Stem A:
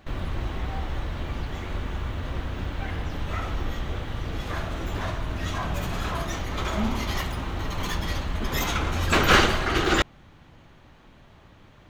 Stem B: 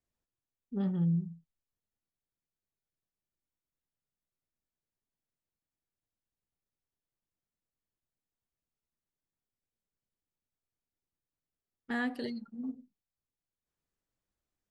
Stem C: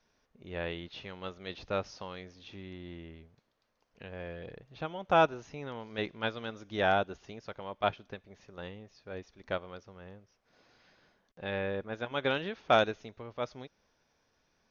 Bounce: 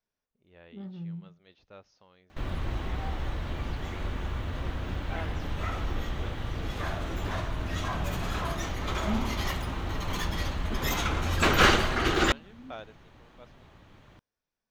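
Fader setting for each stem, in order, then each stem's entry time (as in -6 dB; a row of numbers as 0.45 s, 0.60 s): -2.5 dB, -9.5 dB, -17.5 dB; 2.30 s, 0.00 s, 0.00 s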